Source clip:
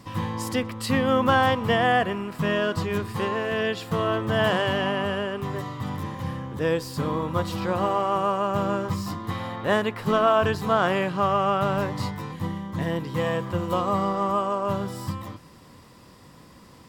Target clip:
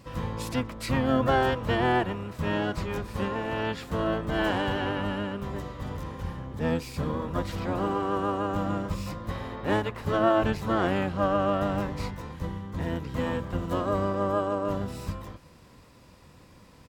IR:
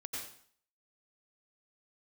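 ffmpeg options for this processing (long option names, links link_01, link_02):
-filter_complex "[0:a]asplit=3[link_01][link_02][link_03];[link_02]asetrate=22050,aresample=44100,atempo=2,volume=0dB[link_04];[link_03]asetrate=58866,aresample=44100,atempo=0.749154,volume=-13dB[link_05];[link_01][link_04][link_05]amix=inputs=3:normalize=0,volume=-6.5dB"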